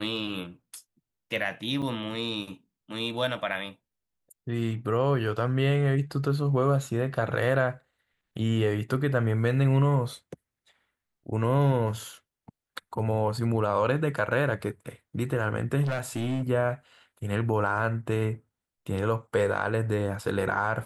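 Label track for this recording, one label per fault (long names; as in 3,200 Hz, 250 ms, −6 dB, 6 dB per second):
1.820000	1.820000	drop-out 4.9 ms
15.820000	16.430000	clipping −25 dBFS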